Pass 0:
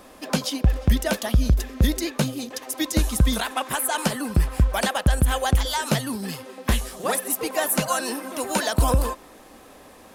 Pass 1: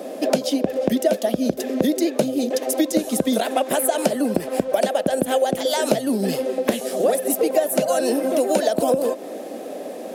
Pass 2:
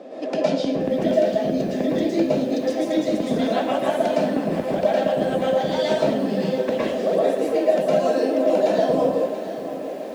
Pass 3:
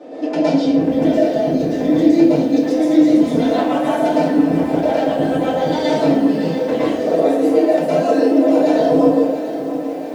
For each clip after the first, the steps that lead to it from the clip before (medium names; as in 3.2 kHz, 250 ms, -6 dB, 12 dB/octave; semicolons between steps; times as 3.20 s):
high-pass 210 Hz 24 dB/octave; resonant low shelf 800 Hz +8 dB, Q 3; compression 4:1, threshold -24 dBFS, peak gain reduction 15 dB; trim +6.5 dB
distance through air 150 m; reverberation RT60 0.65 s, pre-delay 106 ms, DRR -6.5 dB; bit-crushed delay 683 ms, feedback 55%, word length 6-bit, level -12 dB; trim -7 dB
FDN reverb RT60 0.39 s, low-frequency decay 1.25×, high-frequency decay 0.65×, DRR -8.5 dB; trim -5 dB